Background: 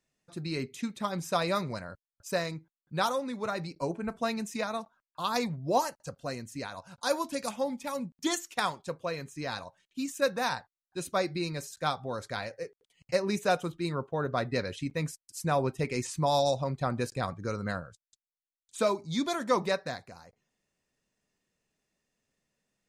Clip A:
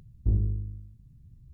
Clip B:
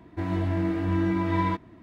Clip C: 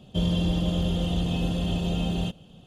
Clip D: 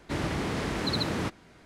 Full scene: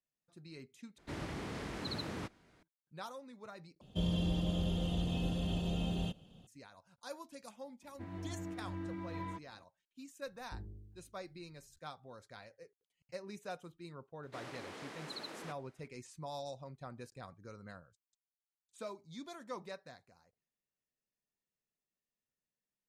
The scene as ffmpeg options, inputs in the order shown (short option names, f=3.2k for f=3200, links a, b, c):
-filter_complex "[4:a]asplit=2[a][b];[0:a]volume=-17.5dB[c];[1:a]equalizer=f=78:w=0.38:g=-14[d];[b]highpass=360[e];[c]asplit=3[f][g][h];[f]atrim=end=0.984[i];[a]atrim=end=1.65,asetpts=PTS-STARTPTS,volume=-11.5dB[j];[g]atrim=start=2.626:end=3.814[k];[3:a]atrim=end=2.66,asetpts=PTS-STARTPTS,volume=-9dB[l];[h]atrim=start=6.466[m];[2:a]atrim=end=1.82,asetpts=PTS-STARTPTS,volume=-17.5dB,afade=t=in:d=0.004:c=hsin,afade=t=out:st=1.816:d=0.004:c=hsin,adelay=7820[n];[d]atrim=end=1.53,asetpts=PTS-STARTPTS,volume=-10.5dB,afade=t=in:d=0.004:c=hsin,afade=t=out:st=1.526:d=0.004:c=hsin,adelay=452466S[o];[e]atrim=end=1.65,asetpts=PTS-STARTPTS,volume=-14.5dB,afade=t=in:d=0.004:c=hsin,afade=t=out:st=1.646:d=0.004:c=hsin,adelay=14230[p];[i][j]acrossfade=d=0.004:c1=hsin:c2=hsin[q];[q][k]acrossfade=d=0.004:c1=hsin:c2=hsin[r];[r][l]acrossfade=d=0.004:c1=hsin:c2=hsin[s];[s][m]acrossfade=d=0.004:c1=hsin:c2=hsin[t];[t][n][o][p]amix=inputs=4:normalize=0"